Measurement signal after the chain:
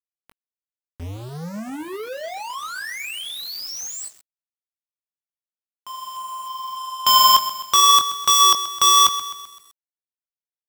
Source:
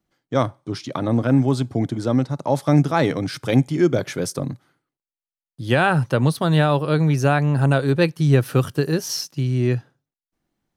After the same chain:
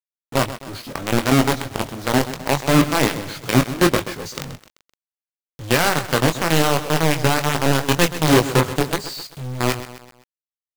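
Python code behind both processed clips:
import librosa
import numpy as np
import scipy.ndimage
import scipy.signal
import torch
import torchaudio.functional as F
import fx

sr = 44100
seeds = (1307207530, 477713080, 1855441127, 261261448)

y = fx.freq_compress(x, sr, knee_hz=3100.0, ratio=1.5)
y = fx.quant_companded(y, sr, bits=2)
y = fx.chorus_voices(y, sr, voices=4, hz=1.3, base_ms=21, depth_ms=3.0, mix_pct=30)
y = fx.echo_crushed(y, sr, ms=129, feedback_pct=55, bits=5, wet_db=-13.0)
y = y * librosa.db_to_amplitude(-4.0)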